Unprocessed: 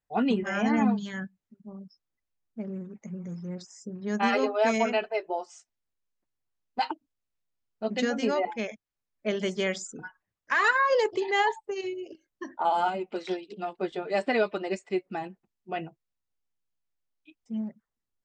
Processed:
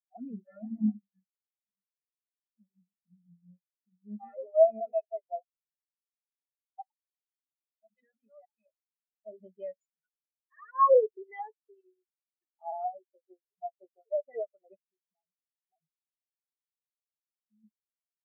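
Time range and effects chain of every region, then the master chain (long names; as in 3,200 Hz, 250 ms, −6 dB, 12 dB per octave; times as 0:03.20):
0:00.69–0:02.80: low-pass filter 2,200 Hz 6 dB per octave + chorus effect 2.7 Hz, delay 16.5 ms, depth 6.6 ms
0:06.92–0:08.66: parametric band 440 Hz −11.5 dB 2 octaves + mains-hum notches 60/120/180/240/300/360 Hz
0:14.88–0:17.64: downward compressor 10 to 1, threshold −35 dBFS + pitch modulation by a square or saw wave saw up 5.7 Hz, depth 100 cents
whole clip: comb filter 1.6 ms, depth 57%; brickwall limiter −19.5 dBFS; every bin expanded away from the loudest bin 4 to 1; level +8 dB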